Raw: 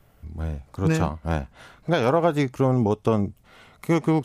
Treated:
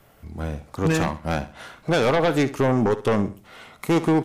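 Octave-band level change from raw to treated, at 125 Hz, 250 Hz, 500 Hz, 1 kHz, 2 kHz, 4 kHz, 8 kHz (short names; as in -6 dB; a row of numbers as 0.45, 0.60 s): -1.5, +1.0, +1.5, +1.0, +4.5, +5.0, +5.0 dB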